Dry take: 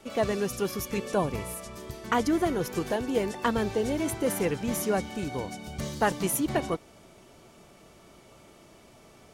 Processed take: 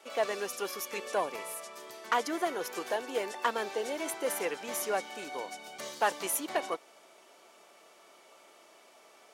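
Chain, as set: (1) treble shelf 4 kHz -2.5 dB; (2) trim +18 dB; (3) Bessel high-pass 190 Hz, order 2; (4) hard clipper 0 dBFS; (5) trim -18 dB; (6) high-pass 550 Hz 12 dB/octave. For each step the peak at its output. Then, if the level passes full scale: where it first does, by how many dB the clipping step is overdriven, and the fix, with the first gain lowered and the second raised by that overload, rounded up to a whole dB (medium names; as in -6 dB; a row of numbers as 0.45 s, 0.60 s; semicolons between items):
-14.0 dBFS, +4.0 dBFS, +5.5 dBFS, 0.0 dBFS, -18.0 dBFS, -14.0 dBFS; step 2, 5.5 dB; step 2 +12 dB, step 5 -12 dB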